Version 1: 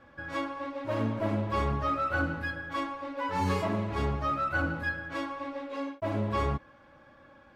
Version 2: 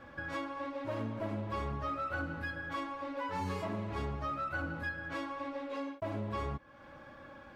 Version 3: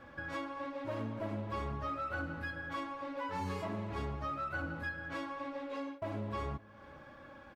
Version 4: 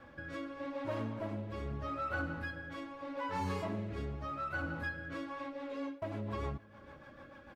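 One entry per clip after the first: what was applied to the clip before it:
compressor 2.5:1, threshold -44 dBFS, peak gain reduction 13 dB; gain +4 dB
outdoor echo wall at 77 m, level -21 dB; gain -1.5 dB
rotary speaker horn 0.8 Hz, later 6.7 Hz, at 5.02; gain +2 dB

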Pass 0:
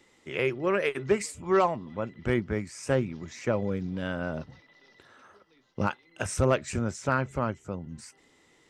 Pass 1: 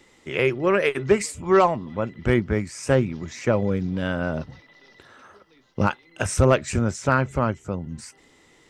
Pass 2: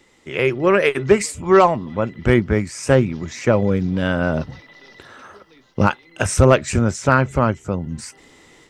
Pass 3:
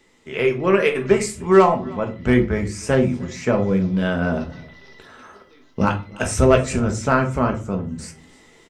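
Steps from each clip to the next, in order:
low shelf 67 Hz +6 dB; gain +6 dB
AGC gain up to 7.5 dB
echo 0.307 s -23 dB; on a send at -3 dB: reverb RT60 0.35 s, pre-delay 5 ms; on the sum: gain -4 dB

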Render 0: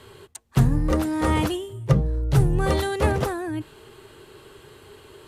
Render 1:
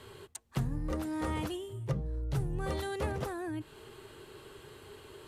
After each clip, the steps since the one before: compressor 2:1, threshold -34 dBFS, peak gain reduction 12 dB; gain -4 dB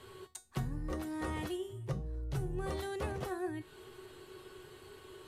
resonator 370 Hz, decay 0.27 s, harmonics all, mix 80%; gain +8.5 dB

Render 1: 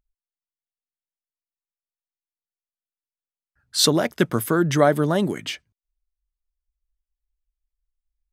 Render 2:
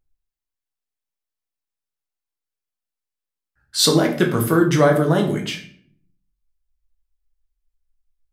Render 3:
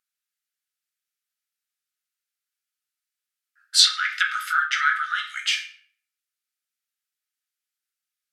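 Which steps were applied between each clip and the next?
reverb RT60 0.55 s, pre-delay 6 ms, DRR 1 dB
treble ducked by the level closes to 2700 Hz, closed at -12 dBFS; brick-wall FIR high-pass 1200 Hz; gain +6 dB

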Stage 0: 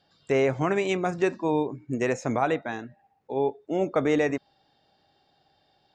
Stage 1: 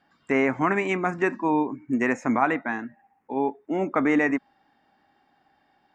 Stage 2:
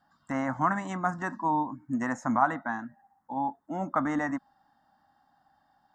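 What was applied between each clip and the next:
graphic EQ 125/250/500/1000/2000/4000 Hz -7/+11/-6/+8/+10/-11 dB; gain -2 dB
fixed phaser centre 1000 Hz, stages 4

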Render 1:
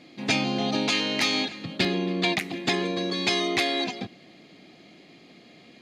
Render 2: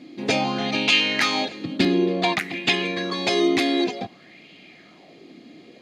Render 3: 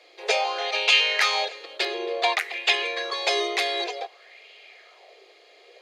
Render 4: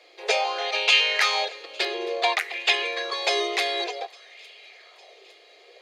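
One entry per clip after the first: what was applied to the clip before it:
LFO bell 0.55 Hz 270–2800 Hz +12 dB
steep high-pass 410 Hz 72 dB/oct
thin delay 0.857 s, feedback 57%, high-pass 2600 Hz, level -23.5 dB

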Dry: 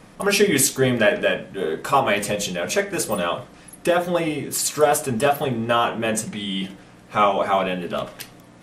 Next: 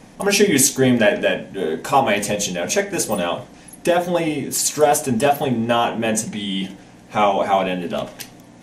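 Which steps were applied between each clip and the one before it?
thirty-one-band EQ 250 Hz +6 dB, 800 Hz +4 dB, 1250 Hz -8 dB, 6300 Hz +6 dB; gain +1.5 dB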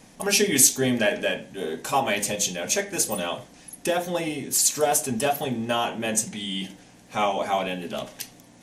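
high shelf 2900 Hz +8.5 dB; gain -8 dB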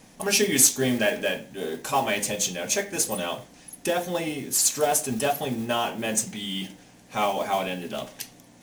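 modulation noise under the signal 20 dB; gain -1 dB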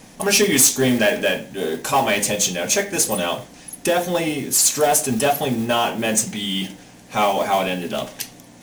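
soft clip -15.5 dBFS, distortion -15 dB; gain +7.5 dB

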